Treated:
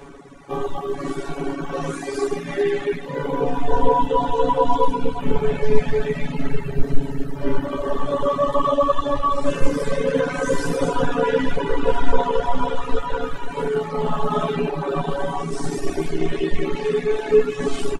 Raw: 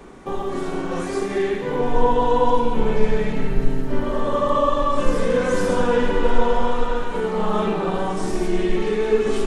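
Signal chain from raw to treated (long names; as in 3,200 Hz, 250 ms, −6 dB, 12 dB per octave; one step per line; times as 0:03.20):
time stretch by overlap-add 1.9×, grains 30 ms
reverb reduction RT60 1.3 s
level +3 dB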